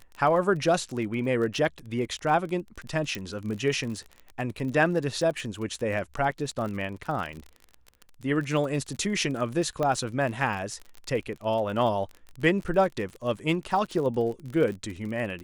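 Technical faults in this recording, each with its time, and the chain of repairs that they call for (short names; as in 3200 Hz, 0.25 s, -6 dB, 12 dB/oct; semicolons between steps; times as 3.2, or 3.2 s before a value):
crackle 34/s -33 dBFS
3.15 pop
9.83 pop -16 dBFS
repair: de-click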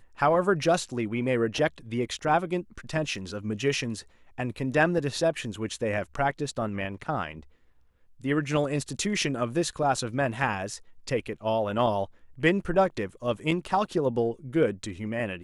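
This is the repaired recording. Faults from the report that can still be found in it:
3.15 pop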